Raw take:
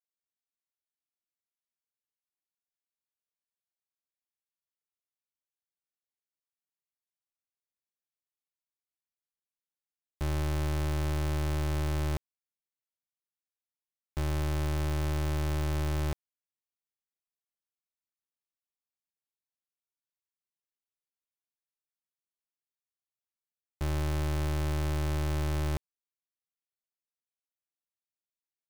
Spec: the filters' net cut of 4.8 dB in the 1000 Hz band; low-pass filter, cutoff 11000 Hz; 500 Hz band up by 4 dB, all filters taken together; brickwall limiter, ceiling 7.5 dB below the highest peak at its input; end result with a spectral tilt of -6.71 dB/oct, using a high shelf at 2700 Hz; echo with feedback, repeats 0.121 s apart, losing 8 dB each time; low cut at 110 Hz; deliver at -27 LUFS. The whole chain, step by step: HPF 110 Hz; LPF 11000 Hz; bell 500 Hz +8 dB; bell 1000 Hz -8.5 dB; high shelf 2700 Hz -5 dB; limiter -31 dBFS; feedback echo 0.121 s, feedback 40%, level -8 dB; gain +14.5 dB

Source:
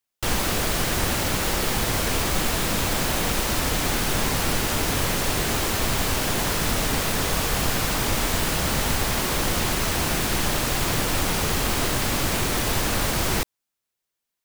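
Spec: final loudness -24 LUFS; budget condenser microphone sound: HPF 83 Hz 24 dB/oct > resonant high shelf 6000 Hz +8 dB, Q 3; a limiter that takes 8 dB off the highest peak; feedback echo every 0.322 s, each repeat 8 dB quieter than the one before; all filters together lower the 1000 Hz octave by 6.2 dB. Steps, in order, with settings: bell 1000 Hz -8 dB; limiter -17.5 dBFS; HPF 83 Hz 24 dB/oct; resonant high shelf 6000 Hz +8 dB, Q 3; feedback echo 0.322 s, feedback 40%, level -8 dB; gain -5 dB

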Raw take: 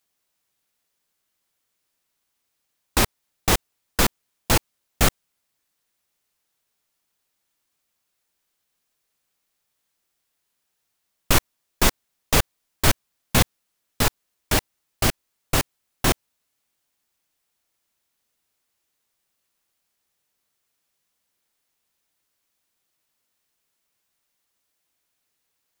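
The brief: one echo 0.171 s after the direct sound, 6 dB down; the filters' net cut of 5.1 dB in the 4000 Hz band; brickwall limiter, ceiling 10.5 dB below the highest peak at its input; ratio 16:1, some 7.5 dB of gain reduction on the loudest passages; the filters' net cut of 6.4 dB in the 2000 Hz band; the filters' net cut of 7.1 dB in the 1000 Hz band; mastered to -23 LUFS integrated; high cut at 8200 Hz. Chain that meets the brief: LPF 8200 Hz; bell 1000 Hz -8 dB; bell 2000 Hz -4.5 dB; bell 4000 Hz -4.5 dB; compressor 16:1, threshold -21 dBFS; limiter -18.5 dBFS; echo 0.171 s -6 dB; gain +13 dB

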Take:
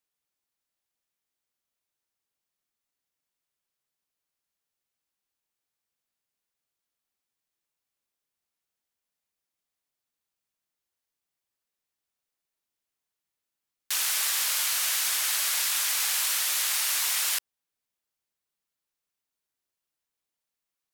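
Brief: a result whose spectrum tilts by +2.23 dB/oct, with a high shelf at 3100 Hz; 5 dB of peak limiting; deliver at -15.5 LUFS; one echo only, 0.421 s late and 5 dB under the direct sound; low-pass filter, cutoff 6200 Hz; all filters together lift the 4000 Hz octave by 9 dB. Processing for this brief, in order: LPF 6200 Hz; high shelf 3100 Hz +4 dB; bell 4000 Hz +9 dB; limiter -15.5 dBFS; echo 0.421 s -5 dB; gain +6 dB

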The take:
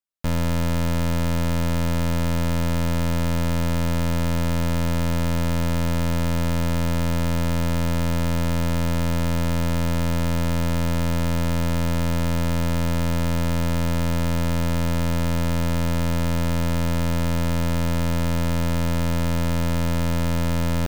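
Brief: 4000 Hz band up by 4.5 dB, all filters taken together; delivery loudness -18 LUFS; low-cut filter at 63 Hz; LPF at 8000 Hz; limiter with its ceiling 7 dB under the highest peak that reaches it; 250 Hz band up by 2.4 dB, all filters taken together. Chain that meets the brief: HPF 63 Hz; LPF 8000 Hz; bell 250 Hz +3.5 dB; bell 4000 Hz +6 dB; gain +12 dB; limiter -6.5 dBFS

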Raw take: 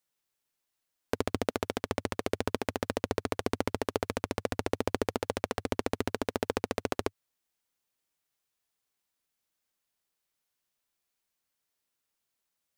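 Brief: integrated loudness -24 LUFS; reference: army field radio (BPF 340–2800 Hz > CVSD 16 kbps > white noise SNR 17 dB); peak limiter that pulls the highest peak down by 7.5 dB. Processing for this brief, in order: limiter -17.5 dBFS; BPF 340–2800 Hz; CVSD 16 kbps; white noise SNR 17 dB; gain +20.5 dB

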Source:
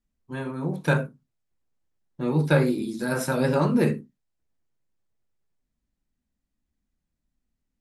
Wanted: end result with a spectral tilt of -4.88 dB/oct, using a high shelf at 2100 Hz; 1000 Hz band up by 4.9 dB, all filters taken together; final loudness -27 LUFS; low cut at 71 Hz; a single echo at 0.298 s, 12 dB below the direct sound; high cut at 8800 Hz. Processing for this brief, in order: HPF 71 Hz; LPF 8800 Hz; bell 1000 Hz +7.5 dB; high shelf 2100 Hz -7 dB; echo 0.298 s -12 dB; gain -3 dB

